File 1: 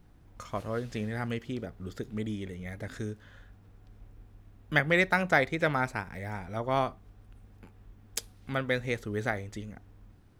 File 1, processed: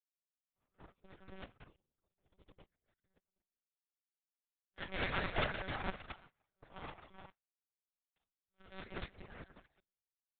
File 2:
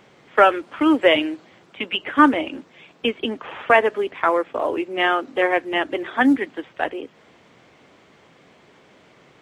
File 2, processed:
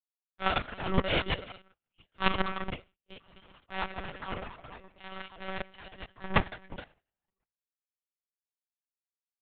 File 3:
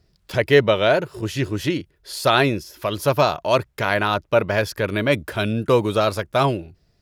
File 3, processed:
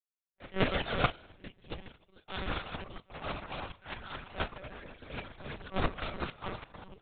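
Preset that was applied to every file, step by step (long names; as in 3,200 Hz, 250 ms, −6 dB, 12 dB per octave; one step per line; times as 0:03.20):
parametric band 630 Hz −10.5 dB 0.23 octaves
feedback echo with a high-pass in the loop 1,013 ms, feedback 27%, high-pass 640 Hz, level −13.5 dB
reverb whose tail is shaped and stops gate 460 ms flat, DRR −3.5 dB
transient designer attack −9 dB, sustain +10 dB
parametric band 2,000 Hz −5.5 dB 0.37 octaves
power curve on the samples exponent 3
reverb reduction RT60 0.99 s
one-pitch LPC vocoder at 8 kHz 190 Hz
noise gate −60 dBFS, range −16 dB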